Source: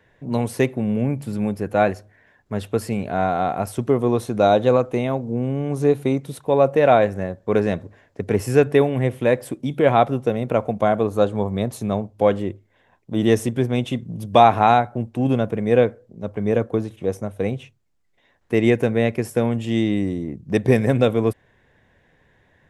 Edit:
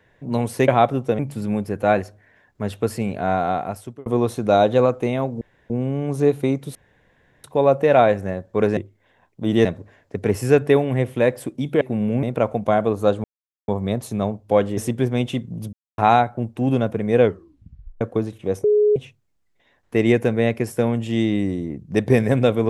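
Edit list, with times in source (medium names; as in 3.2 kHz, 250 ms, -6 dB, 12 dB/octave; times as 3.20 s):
0.68–1.10 s: swap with 9.86–10.37 s
3.39–3.97 s: fade out
5.32 s: insert room tone 0.29 s
6.37 s: insert room tone 0.69 s
11.38 s: insert silence 0.44 s
12.47–13.35 s: move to 7.70 s
14.31–14.56 s: mute
15.79 s: tape stop 0.80 s
17.22–17.54 s: bleep 419 Hz -12.5 dBFS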